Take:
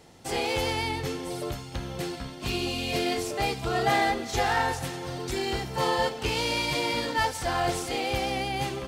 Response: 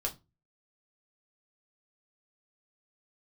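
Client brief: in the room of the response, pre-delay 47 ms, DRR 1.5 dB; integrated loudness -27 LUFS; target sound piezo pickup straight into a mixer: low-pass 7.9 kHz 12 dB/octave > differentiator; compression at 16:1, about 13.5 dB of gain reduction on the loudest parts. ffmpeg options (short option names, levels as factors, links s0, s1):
-filter_complex "[0:a]acompressor=threshold=0.0224:ratio=16,asplit=2[s0][s1];[1:a]atrim=start_sample=2205,adelay=47[s2];[s1][s2]afir=irnorm=-1:irlink=0,volume=0.596[s3];[s0][s3]amix=inputs=2:normalize=0,lowpass=7900,aderivative,volume=7.94"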